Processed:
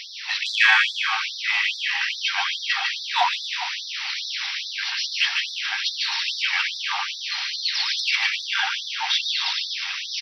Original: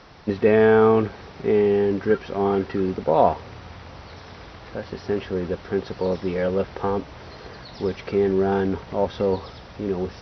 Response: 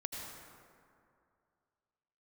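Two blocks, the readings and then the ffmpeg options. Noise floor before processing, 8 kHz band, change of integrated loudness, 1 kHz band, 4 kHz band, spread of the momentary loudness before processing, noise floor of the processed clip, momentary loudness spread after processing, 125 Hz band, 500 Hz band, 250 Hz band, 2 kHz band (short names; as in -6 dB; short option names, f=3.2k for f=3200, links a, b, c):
-43 dBFS, n/a, 0.0 dB, -1.5 dB, +22.0 dB, 22 LU, -34 dBFS, 6 LU, under -40 dB, -29.0 dB, under -40 dB, +13.0 dB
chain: -filter_complex "[0:a]highshelf=f=1.7k:t=q:w=1.5:g=12,acontrast=66,asplit=2[a][b];[b]aecho=0:1:150|262.5|346.9|410.2|457.6:0.631|0.398|0.251|0.158|0.1[c];[a][c]amix=inputs=2:normalize=0,afftfilt=real='re*gte(b*sr/1024,720*pow(3500/720,0.5+0.5*sin(2*PI*2.4*pts/sr)))':imag='im*gte(b*sr/1024,720*pow(3500/720,0.5+0.5*sin(2*PI*2.4*pts/sr)))':win_size=1024:overlap=0.75"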